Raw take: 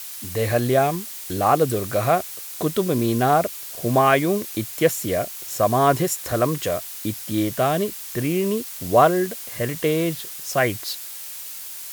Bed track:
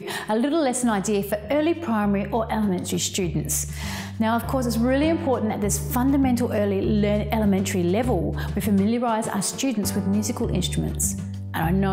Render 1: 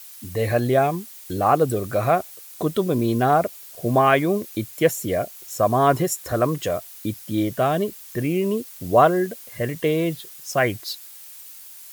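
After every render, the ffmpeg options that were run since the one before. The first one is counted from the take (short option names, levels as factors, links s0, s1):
-af "afftdn=nr=9:nf=-35"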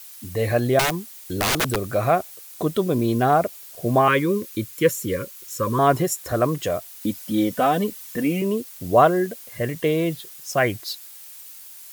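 -filter_complex "[0:a]asettb=1/sr,asplit=3[s0][s1][s2];[s0]atrim=end=0.794[s3];[s1]atrim=start=0.79:end=1.94,asetpts=PTS-STARTPTS,afade=t=in:d=0.004:c=qsin,afade=t=out:st=1.146:d=0.004:c=qsin,aeval=exprs='(mod(5.96*val(0)+1,2)-1)/5.96':c=same[s4];[s2]atrim=start=1.936[s5];[s3][s4]acrossfade=d=0.004:c1=hsin:c2=qsin[s6];[s6][s5]acrossfade=d=0.004:c1=qsin:c2=hsin,asettb=1/sr,asplit=3[s7][s8][s9];[s7]atrim=end=4.084[s10];[s8]atrim=start=4.08:end=5.79,asetpts=PTS-STARTPTS,afade=t=in:d=0.004:c=qsin,afade=t=out:st=1.706:d=0.004:c=qsin,asuperstop=centerf=730:order=20:qfactor=2[s11];[s9]atrim=start=5.786[s12];[s10][s11]acrossfade=d=0.004:c1=hsin:c2=qsin[s13];[s13][s12]acrossfade=d=0.004:c1=qsin:c2=hsin,asettb=1/sr,asplit=3[s14][s15][s16];[s14]atrim=end=7.014[s17];[s15]atrim=start=7.01:end=8.42,asetpts=PTS-STARTPTS,afade=t=in:d=0.004:c=qsin,afade=t=out:st=1.406:d=0.004:c=qsin,aecho=1:1:4:0.82,atrim=end_sample=62181[s18];[s16]atrim=start=8.416[s19];[s17][s18]acrossfade=d=0.004:c1=hsin:c2=qsin[s20];[s20][s19]acrossfade=d=0.004:c1=qsin:c2=hsin"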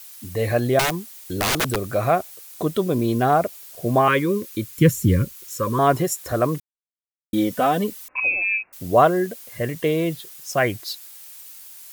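-filter_complex "[0:a]asplit=3[s0][s1][s2];[s0]afade=t=out:st=4.76:d=0.02[s3];[s1]asubboost=boost=10.5:cutoff=190,afade=t=in:st=4.76:d=0.02,afade=t=out:st=5.32:d=0.02[s4];[s2]afade=t=in:st=5.32:d=0.02[s5];[s3][s4][s5]amix=inputs=3:normalize=0,asettb=1/sr,asplit=3[s6][s7][s8];[s6]atrim=end=8.084[s9];[s7]atrim=start=8.08:end=8.73,asetpts=PTS-STARTPTS,afade=t=in:d=0.004:c=qsin,afade=t=out:st=0.646:d=0.004:c=qsin,lowpass=f=2400:t=q:w=0.5098,lowpass=f=2400:t=q:w=0.6013,lowpass=f=2400:t=q:w=0.9,lowpass=f=2400:t=q:w=2.563,afreqshift=-2800[s10];[s8]atrim=start=8.726[s11];[s9][s10]acrossfade=d=0.004:c1=hsin:c2=qsin[s12];[s12][s11]acrossfade=d=0.004:c1=qsin:c2=hsin,asplit=3[s13][s14][s15];[s13]atrim=end=6.6,asetpts=PTS-STARTPTS,afade=t=out:st=6.596:d=0.004:c=hsin[s16];[s14]atrim=start=6.6:end=7.33,asetpts=PTS-STARTPTS,volume=0[s17];[s15]atrim=start=7.33,asetpts=PTS-STARTPTS,afade=t=in:d=0.004:c=hsin[s18];[s16][s17][s18]concat=n=3:v=0:a=1"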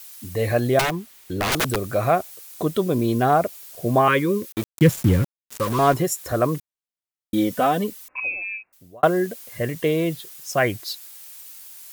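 -filter_complex "[0:a]asettb=1/sr,asplit=3[s0][s1][s2];[s0]atrim=end=0.814[s3];[s1]atrim=start=0.81:end=1.52,asetpts=PTS-STARTPTS,afade=t=in:d=0.004:c=qsin,afade=t=out:st=0.706:d=0.004:c=qsin,bass=f=250:g=0,treble=f=4000:g=-8[s4];[s2]atrim=start=1.516[s5];[s3][s4]acrossfade=d=0.004:c1=hsin:c2=qsin[s6];[s6][s5]acrossfade=d=0.004:c1=qsin:c2=hsin,asettb=1/sr,asplit=3[s7][s8][s9];[s7]atrim=end=4.524[s10];[s8]atrim=start=4.52:end=5.94,asetpts=PTS-STARTPTS,afade=t=in:d=0.004:c=qsin,afade=t=out:st=1.416:d=0.004:c=qsin,aeval=exprs='val(0)*gte(abs(val(0)),0.0473)':c=same[s11];[s9]atrim=start=5.936[s12];[s10][s11]acrossfade=d=0.004:c1=hsin:c2=qsin[s13];[s13][s12]acrossfade=d=0.004:c1=qsin:c2=hsin,asplit=2[s14][s15];[s14]atrim=end=9.03,asetpts=PTS-STARTPTS,afade=t=out:st=7.63:d=1.4[s16];[s15]atrim=start=9.03,asetpts=PTS-STARTPTS,afade=t=in:d=0.004:c=hsin[s17];[s16][s17]concat=n=2:v=0:a=1"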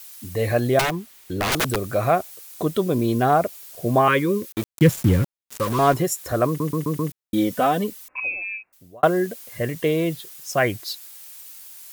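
-filter_complex "[0:a]asplit=6[s0][s1][s2][s3][s4][s5];[s0]atrim=end=6.602[s6];[s1]atrim=start=6.468:end=6.602[s7];[s2]atrim=start=6.468:end=6.602[s8];[s3]atrim=start=6.468:end=6.602[s9];[s4]atrim=start=6.468:end=6.602[s10];[s5]atrim=start=7.118[s11];[s6][s7]acrossfade=d=0.004:c1=hsin:c2=hsin[s12];[s12][s8]acrossfade=d=0.004:c1=hsin:c2=hsin[s13];[s13][s9]acrossfade=d=0.004:c1=hsin:c2=hsin[s14];[s14][s10]acrossfade=d=0.004:c1=hsin:c2=hsin[s15];[s15][s11]acrossfade=d=0.004:c1=hsin:c2=hsin"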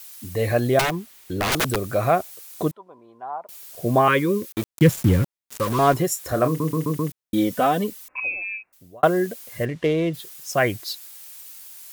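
-filter_complex "[0:a]asettb=1/sr,asplit=3[s0][s1][s2];[s0]atrim=end=2.714[s3];[s1]atrim=start=2.71:end=3.49,asetpts=PTS-STARTPTS,afade=t=in:d=0.004:c=qsin,afade=t=out:st=0.776:d=0.004:c=qsin,bandpass=f=920:t=q:w=11[s4];[s2]atrim=start=3.486[s5];[s3][s4]acrossfade=d=0.004:c1=hsin:c2=qsin[s6];[s6][s5]acrossfade=d=0.004:c1=qsin:c2=hsin,asettb=1/sr,asplit=3[s7][s8][s9];[s7]atrim=end=6.104[s10];[s8]atrim=start=6.1:end=6.92,asetpts=PTS-STARTPTS,afade=t=in:d=0.004:c=qsin,afade=t=out:st=0.816:d=0.004:c=qsin,asplit=2[s11][s12];[s12]adelay=31,volume=0.299[s13];[s11][s13]amix=inputs=2:normalize=0,atrim=end_sample=36162[s14];[s9]atrim=start=6.916[s15];[s10][s14]acrossfade=d=0.004:c1=hsin:c2=qsin[s16];[s16][s15]acrossfade=d=0.004:c1=qsin:c2=hsin,asplit=3[s17][s18][s19];[s17]afade=t=out:st=9.64:d=0.02[s20];[s18]adynamicsmooth=sensitivity=3.5:basefreq=3400,afade=t=in:st=9.64:d=0.02,afade=t=out:st=10.13:d=0.02[s21];[s19]afade=t=in:st=10.13:d=0.02[s22];[s20][s21][s22]amix=inputs=3:normalize=0"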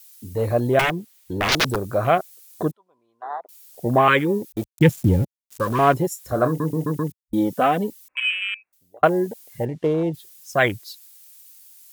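-af "afwtdn=0.0398,highshelf=f=2400:g=10.5"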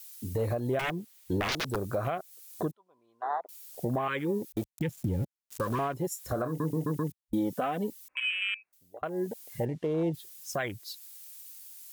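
-af "acompressor=threshold=0.0891:ratio=2.5,alimiter=limit=0.0891:level=0:latency=1:release=499"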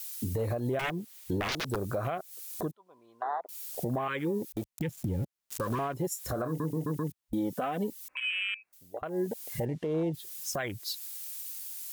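-filter_complex "[0:a]asplit=2[s0][s1];[s1]acompressor=threshold=0.0112:ratio=6,volume=1.33[s2];[s0][s2]amix=inputs=2:normalize=0,alimiter=limit=0.0708:level=0:latency=1:release=248"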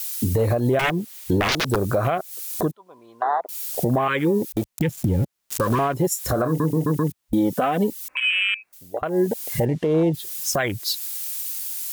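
-af "volume=3.55"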